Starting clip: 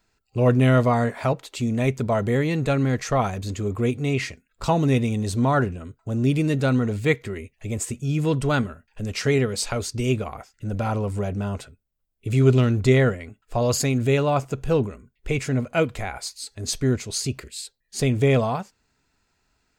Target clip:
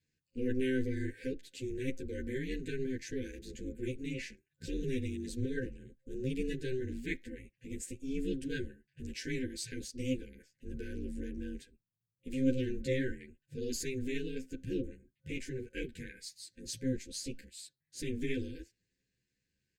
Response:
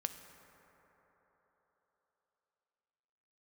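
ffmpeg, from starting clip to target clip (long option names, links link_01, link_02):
-filter_complex "[0:a]aeval=exprs='val(0)*sin(2*PI*130*n/s)':channel_layout=same,afftfilt=real='re*(1-between(b*sr/4096,530,1500))':imag='im*(1-between(b*sr/4096,530,1500))':win_size=4096:overlap=0.75,asplit=2[link_01][link_02];[link_02]adelay=10.7,afreqshift=0.45[link_03];[link_01][link_03]amix=inputs=2:normalize=1,volume=-8dB"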